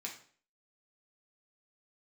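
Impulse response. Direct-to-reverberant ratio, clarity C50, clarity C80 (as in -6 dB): -1.5 dB, 8.5 dB, 12.5 dB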